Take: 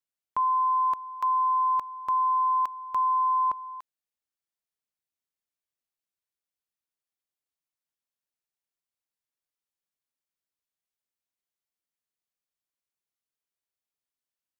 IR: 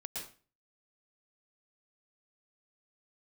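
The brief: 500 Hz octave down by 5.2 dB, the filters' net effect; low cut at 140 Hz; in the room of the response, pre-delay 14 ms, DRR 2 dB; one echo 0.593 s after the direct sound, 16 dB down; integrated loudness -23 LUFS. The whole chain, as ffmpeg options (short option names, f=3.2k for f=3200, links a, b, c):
-filter_complex "[0:a]highpass=140,equalizer=f=500:t=o:g=-7,aecho=1:1:593:0.158,asplit=2[a][b];[1:a]atrim=start_sample=2205,adelay=14[c];[b][c]afir=irnorm=-1:irlink=0,volume=-1dB[d];[a][d]amix=inputs=2:normalize=0,volume=5.5dB"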